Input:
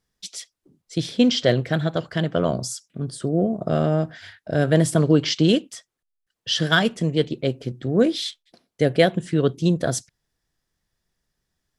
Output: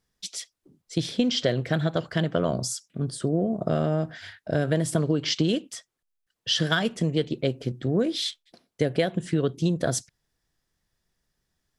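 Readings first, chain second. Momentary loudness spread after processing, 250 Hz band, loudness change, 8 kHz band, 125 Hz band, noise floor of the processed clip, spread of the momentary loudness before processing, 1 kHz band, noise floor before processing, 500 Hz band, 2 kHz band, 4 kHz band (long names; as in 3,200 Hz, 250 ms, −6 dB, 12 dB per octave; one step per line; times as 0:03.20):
10 LU, −5.0 dB, −4.5 dB, −1.5 dB, −4.0 dB, −81 dBFS, 13 LU, −5.0 dB, −81 dBFS, −5.0 dB, −5.5 dB, −3.0 dB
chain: downward compressor 10 to 1, threshold −19 dBFS, peak gain reduction 9.5 dB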